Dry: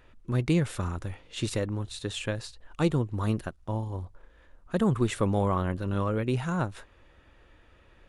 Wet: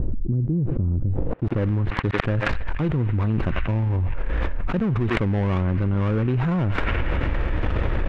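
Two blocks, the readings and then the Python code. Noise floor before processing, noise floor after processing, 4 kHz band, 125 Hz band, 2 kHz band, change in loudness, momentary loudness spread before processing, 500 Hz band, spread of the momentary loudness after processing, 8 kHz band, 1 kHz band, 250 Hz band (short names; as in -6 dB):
-59 dBFS, -27 dBFS, +0.5 dB, +8.5 dB, +9.5 dB, +5.5 dB, 10 LU, +3.0 dB, 4 LU, under -10 dB, +3.5 dB, +5.0 dB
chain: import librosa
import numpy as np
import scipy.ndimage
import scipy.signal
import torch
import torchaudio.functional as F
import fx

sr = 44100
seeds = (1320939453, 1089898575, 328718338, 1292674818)

y = fx.dead_time(x, sr, dead_ms=0.29)
y = fx.low_shelf(y, sr, hz=270.0, db=9.0)
y = fx.filter_sweep_lowpass(y, sr, from_hz=310.0, to_hz=2200.0, start_s=1.09, end_s=1.65, q=0.96)
y = fx.echo_banded(y, sr, ms=93, feedback_pct=79, hz=2200.0, wet_db=-17)
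y = fx.env_flatten(y, sr, amount_pct=100)
y = y * 10.0 ** (-6.0 / 20.0)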